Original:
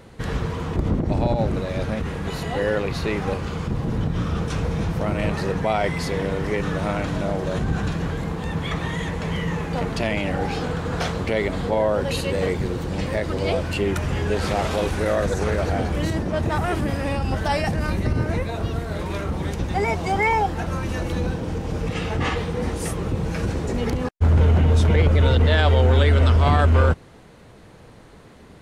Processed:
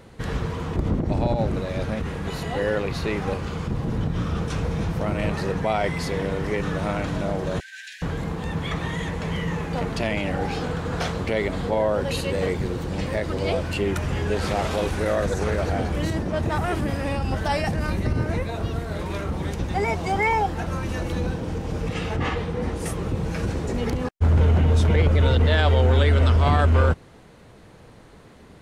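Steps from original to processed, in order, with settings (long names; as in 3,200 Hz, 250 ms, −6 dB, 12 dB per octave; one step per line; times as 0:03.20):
0:07.60–0:08.02: linear-phase brick-wall high-pass 1,500 Hz
0:22.16–0:22.86: high-shelf EQ 4,200 Hz −7 dB
level −1.5 dB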